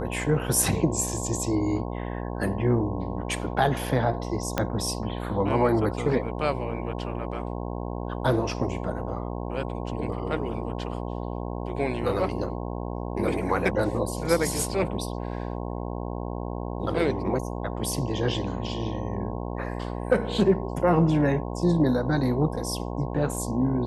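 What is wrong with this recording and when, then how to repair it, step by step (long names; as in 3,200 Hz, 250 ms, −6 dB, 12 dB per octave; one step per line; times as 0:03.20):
mains buzz 60 Hz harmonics 18 −32 dBFS
0:04.58: click −9 dBFS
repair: click removal
hum removal 60 Hz, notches 18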